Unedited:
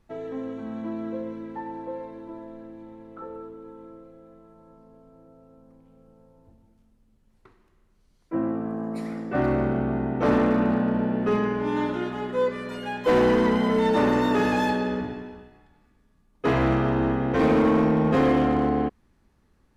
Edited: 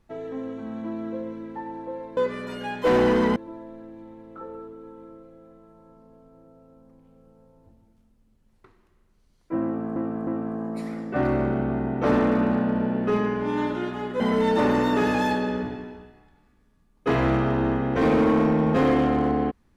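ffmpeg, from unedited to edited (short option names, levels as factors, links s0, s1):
-filter_complex "[0:a]asplit=6[s0][s1][s2][s3][s4][s5];[s0]atrim=end=2.172[s6];[s1]atrim=start=12.388:end=13.582[s7];[s2]atrim=start=2.168:end=8.772[s8];[s3]atrim=start=8.458:end=8.772[s9];[s4]atrim=start=8.458:end=12.392[s10];[s5]atrim=start=13.578[s11];[s6][s7]acrossfade=d=0.004:c1=hsin:c2=hsin[s12];[s12][s8]acrossfade=d=0.004:c1=hsin:c2=hsin[s13];[s13][s9]acrossfade=d=0.004:c1=hsin:c2=hsin[s14];[s14][s10]acrossfade=d=0.004:c1=hsin:c2=hsin[s15];[s15][s11]acrossfade=d=0.004:c1=hsin:c2=hsin"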